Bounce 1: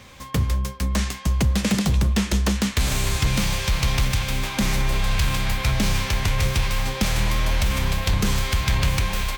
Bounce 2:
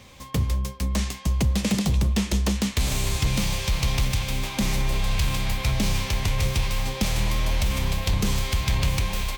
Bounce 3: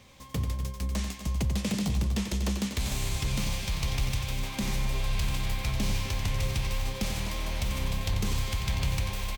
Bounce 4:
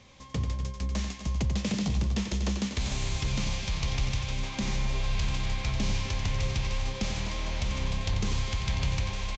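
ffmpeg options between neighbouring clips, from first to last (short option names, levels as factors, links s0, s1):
-af "equalizer=f=1500:t=o:w=0.74:g=-6,volume=0.794"
-af "aecho=1:1:90.38|253.6:0.398|0.251,volume=0.447"
-af "aresample=16000,aresample=44100"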